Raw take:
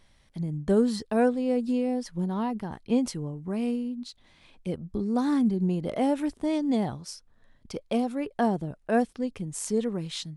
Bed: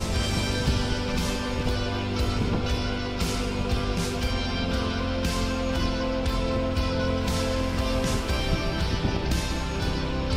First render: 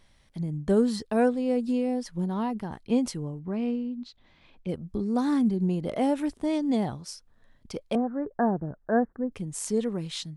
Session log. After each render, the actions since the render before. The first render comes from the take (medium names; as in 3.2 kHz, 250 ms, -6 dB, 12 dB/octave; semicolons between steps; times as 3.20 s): 3.39–4.69 s: distance through air 150 m; 7.95–9.32 s: steep low-pass 1.8 kHz 72 dB/octave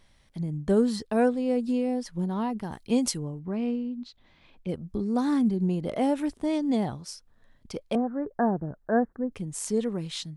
2.62–3.17 s: treble shelf 5.8 kHz -> 3.3 kHz +11 dB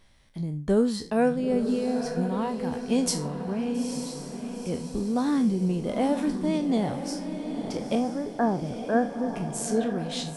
spectral sustain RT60 0.30 s; echo that smears into a reverb 909 ms, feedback 51%, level -7.5 dB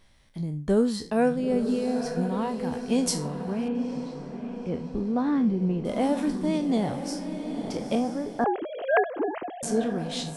3.68–5.85 s: low-pass 2.4 kHz; 8.44–9.63 s: formants replaced by sine waves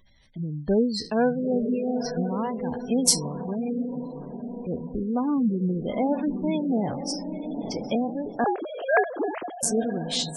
spectral gate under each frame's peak -25 dB strong; treble shelf 2.6 kHz +10.5 dB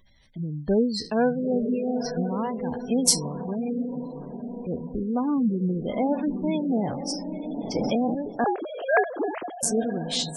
7.75–8.15 s: level flattener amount 70%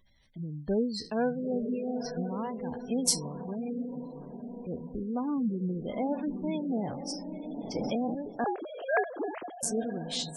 trim -6.5 dB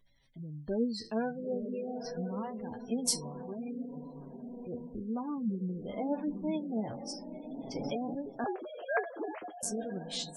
flange 0.25 Hz, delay 6.9 ms, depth 3.7 ms, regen +37%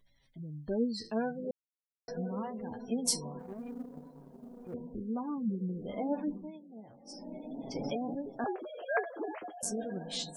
1.51–2.08 s: mute; 3.39–4.74 s: companding laws mixed up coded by A; 6.28–7.27 s: dip -15.5 dB, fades 0.23 s